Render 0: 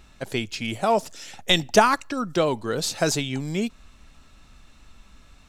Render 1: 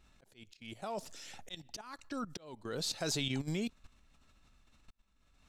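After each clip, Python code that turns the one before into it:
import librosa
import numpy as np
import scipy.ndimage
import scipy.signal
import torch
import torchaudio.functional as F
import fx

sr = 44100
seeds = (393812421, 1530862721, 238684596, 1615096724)

y = fx.dynamic_eq(x, sr, hz=4100.0, q=2.2, threshold_db=-43.0, ratio=4.0, max_db=6)
y = fx.level_steps(y, sr, step_db=15)
y = fx.auto_swell(y, sr, attack_ms=584.0)
y = y * librosa.db_to_amplitude(-4.5)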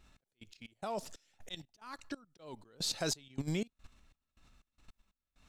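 y = fx.step_gate(x, sr, bpm=182, pattern='xx...xxx..xx', floor_db=-24.0, edge_ms=4.5)
y = y * librosa.db_to_amplitude(1.5)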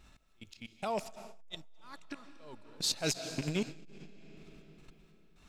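y = fx.rattle_buzz(x, sr, strikes_db=-46.0, level_db=-32.0)
y = fx.rev_freeverb(y, sr, rt60_s=3.2, hf_ratio=0.85, predelay_ms=110, drr_db=9.0)
y = fx.transformer_sat(y, sr, knee_hz=420.0)
y = y * librosa.db_to_amplitude(4.0)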